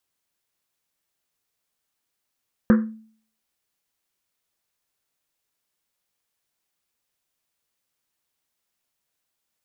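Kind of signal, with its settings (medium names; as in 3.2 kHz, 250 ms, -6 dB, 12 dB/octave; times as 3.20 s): Risset drum, pitch 220 Hz, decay 0.52 s, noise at 1.4 kHz, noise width 770 Hz, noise 10%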